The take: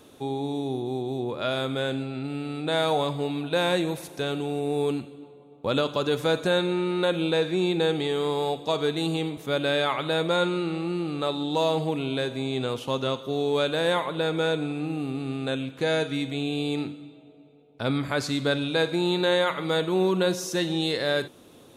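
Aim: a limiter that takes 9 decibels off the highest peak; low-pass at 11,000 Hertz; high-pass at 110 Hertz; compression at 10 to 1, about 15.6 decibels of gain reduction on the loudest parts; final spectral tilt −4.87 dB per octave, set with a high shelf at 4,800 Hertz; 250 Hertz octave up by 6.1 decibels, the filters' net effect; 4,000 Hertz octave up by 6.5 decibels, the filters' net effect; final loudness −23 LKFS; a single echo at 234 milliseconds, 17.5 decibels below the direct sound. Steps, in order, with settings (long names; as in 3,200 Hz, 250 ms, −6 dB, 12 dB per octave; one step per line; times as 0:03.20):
high-pass filter 110 Hz
low-pass filter 11,000 Hz
parametric band 250 Hz +8.5 dB
parametric band 4,000 Hz +4 dB
high-shelf EQ 4,800 Hz +8 dB
downward compressor 10 to 1, threshold −32 dBFS
brickwall limiter −26.5 dBFS
single-tap delay 234 ms −17.5 dB
level +13.5 dB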